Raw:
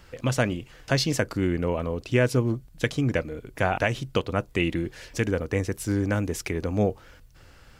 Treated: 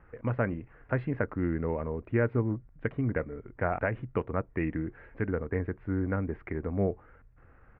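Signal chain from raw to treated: pitch shift -1 st; steep low-pass 2 kHz 36 dB/octave; trim -5 dB

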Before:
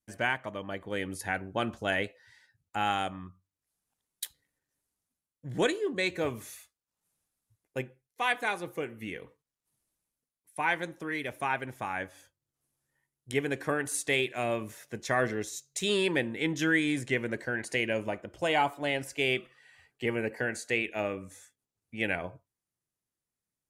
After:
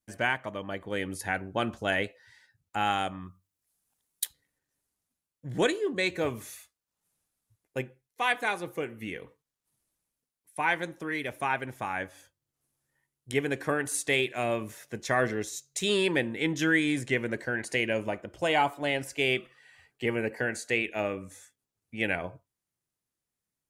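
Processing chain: 3.22–4.24 s: treble shelf 6.6 kHz +7.5 dB; trim +1.5 dB

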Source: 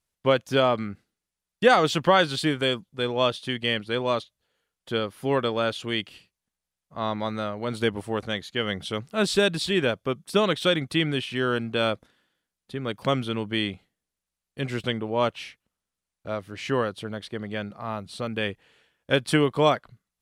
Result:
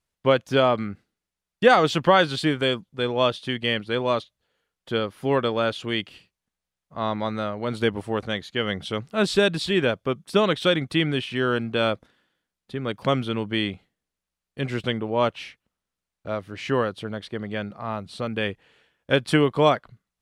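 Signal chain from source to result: treble shelf 6.1 kHz -7.5 dB; trim +2 dB

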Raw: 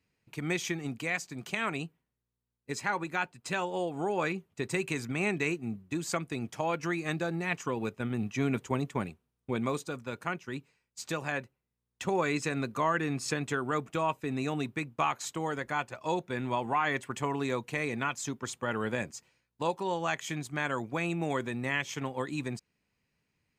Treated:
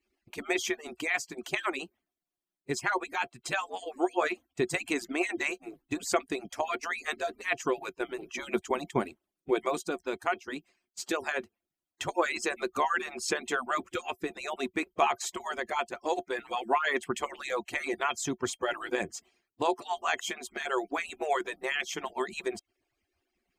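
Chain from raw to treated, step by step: harmonic-percussive separation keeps percussive; small resonant body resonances 370/700/3200 Hz, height 10 dB, ringing for 70 ms; trim +3 dB

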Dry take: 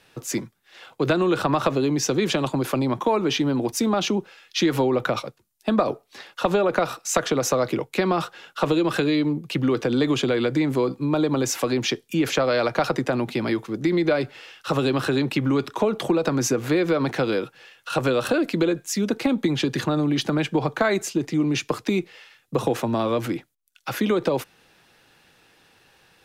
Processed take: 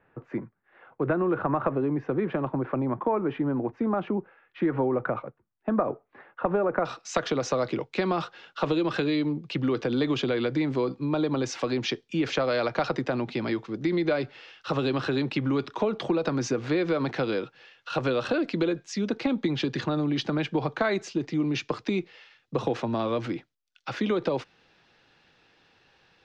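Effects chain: low-pass 1.8 kHz 24 dB/octave, from 6.85 s 5.4 kHz; trim -4.5 dB

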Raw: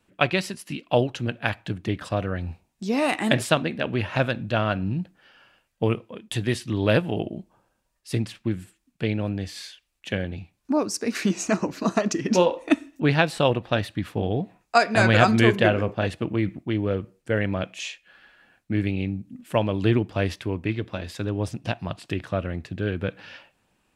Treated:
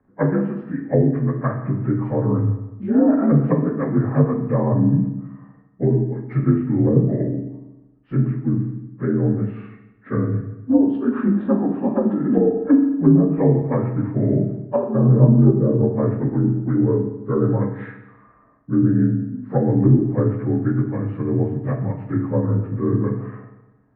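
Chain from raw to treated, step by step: frequency axis rescaled in octaves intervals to 82%; low-pass 1.6 kHz 24 dB/octave; low-pass that closes with the level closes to 380 Hz, closed at -18 dBFS; bass shelf 390 Hz +9.5 dB; on a send: reverberation RT60 1.0 s, pre-delay 4 ms, DRR 2.5 dB

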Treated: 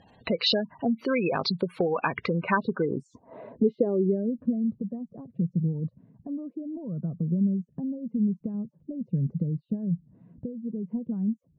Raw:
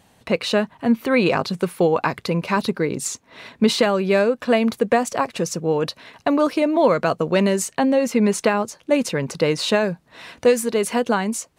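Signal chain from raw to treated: spectral gate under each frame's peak -15 dB strong; compression 4:1, threshold -24 dBFS, peak gain reduction 11.5 dB; low-pass sweep 4.8 kHz -> 170 Hz, 1.51–4.65 s

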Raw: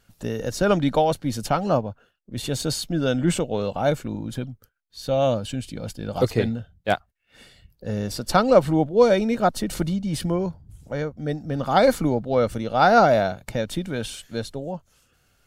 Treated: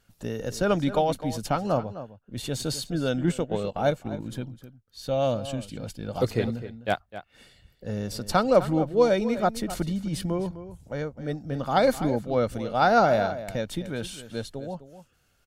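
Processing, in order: echo from a far wall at 44 m, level -13 dB; 3.23–4.26 s: transient shaper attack +4 dB, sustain -8 dB; trim -4 dB

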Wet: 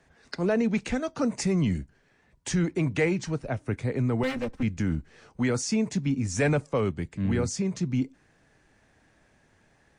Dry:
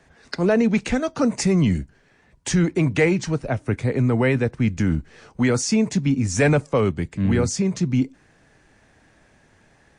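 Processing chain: 4.23–4.63 s: comb filter that takes the minimum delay 3.8 ms; trim -6.5 dB

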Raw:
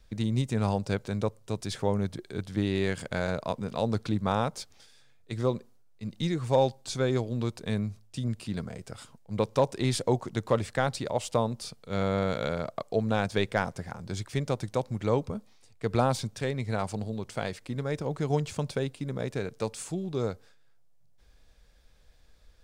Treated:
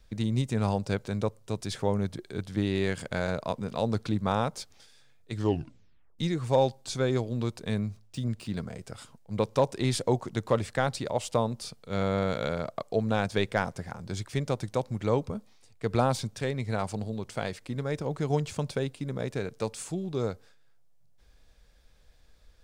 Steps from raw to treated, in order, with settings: 5.33 s: tape stop 0.86 s; 7.77–8.67 s: median filter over 3 samples

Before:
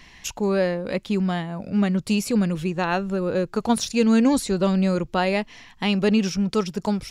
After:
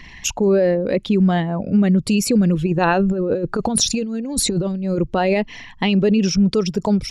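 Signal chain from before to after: resonances exaggerated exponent 1.5; dynamic bell 1.1 kHz, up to -4 dB, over -35 dBFS, Q 1.3; peak limiter -17.5 dBFS, peak gain reduction 8 dB; 2.66–5.00 s: compressor with a negative ratio -27 dBFS, ratio -0.5; trim +8.5 dB

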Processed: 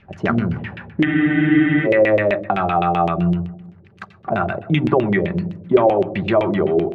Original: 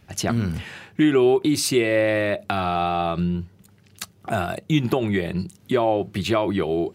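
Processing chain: simulated room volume 3400 m³, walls furnished, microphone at 1.2 m; LFO low-pass saw down 7.8 Hz 400–2900 Hz; spectral freeze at 1.07 s, 0.77 s; trim +1.5 dB

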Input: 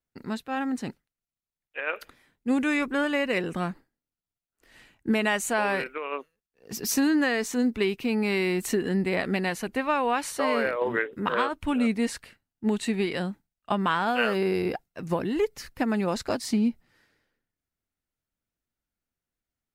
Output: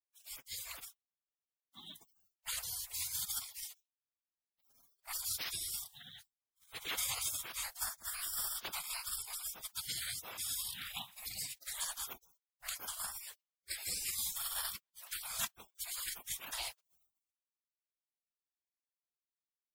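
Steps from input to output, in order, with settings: whisper effect; RIAA curve recording; spectral gate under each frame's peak -30 dB weak; trim +9 dB

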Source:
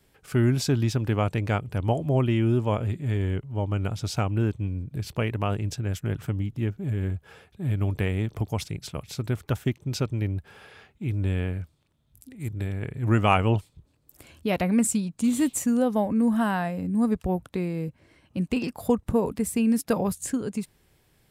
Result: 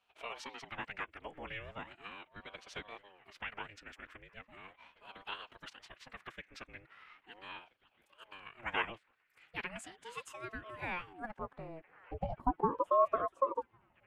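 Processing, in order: band-pass sweep 1.9 kHz -> 280 Hz, 16.54–19.25 s; time stretch by phase-locked vocoder 0.66×; on a send: feedback echo behind a band-pass 1098 ms, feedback 79%, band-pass 1.3 kHz, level -23.5 dB; on the sum: ring modulator with a swept carrier 520 Hz, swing 70%, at 0.38 Hz; trim +1 dB

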